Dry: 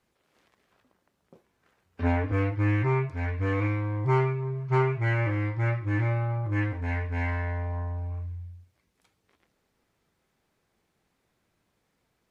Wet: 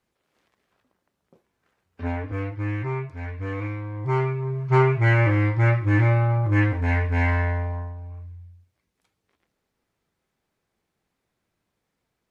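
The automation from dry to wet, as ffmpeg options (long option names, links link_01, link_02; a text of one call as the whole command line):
ffmpeg -i in.wav -af "volume=7.5dB,afade=type=in:start_time=3.93:duration=1.13:silence=0.298538,afade=type=out:start_time=7.41:duration=0.54:silence=0.266073" out.wav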